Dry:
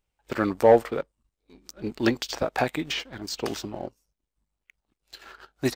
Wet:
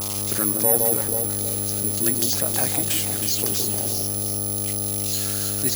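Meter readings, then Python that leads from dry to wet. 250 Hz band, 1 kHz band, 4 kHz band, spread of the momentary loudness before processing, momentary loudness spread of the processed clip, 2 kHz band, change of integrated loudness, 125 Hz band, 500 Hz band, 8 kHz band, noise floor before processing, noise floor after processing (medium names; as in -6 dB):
0.0 dB, -5.0 dB, +6.5 dB, 18 LU, 6 LU, -2.5 dB, +5.5 dB, +8.0 dB, -5.0 dB, +23.0 dB, -84 dBFS, -26 dBFS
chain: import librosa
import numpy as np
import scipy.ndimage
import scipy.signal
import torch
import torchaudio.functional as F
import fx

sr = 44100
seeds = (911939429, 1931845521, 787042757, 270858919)

p1 = x + 0.5 * 10.0 ** (-22.5 / 20.0) * np.diff(np.sign(x), prepend=np.sign(x[:1]))
p2 = scipy.signal.sosfilt(scipy.signal.butter(4, 73.0, 'highpass', fs=sr, output='sos'), p1)
p3 = fx.bass_treble(p2, sr, bass_db=5, treble_db=12)
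p4 = fx.dmg_buzz(p3, sr, base_hz=100.0, harmonics=13, level_db=-35.0, tilt_db=-4, odd_only=False)
p5 = p4 + fx.echo_alternate(p4, sr, ms=160, hz=1000.0, feedback_pct=59, wet_db=-4.5, dry=0)
p6 = (np.kron(scipy.signal.resample_poly(p5, 1, 4), np.eye(4)[0]) * 4)[:len(p5)]
p7 = fx.env_flatten(p6, sr, amount_pct=50)
y = p7 * 10.0 ** (-10.5 / 20.0)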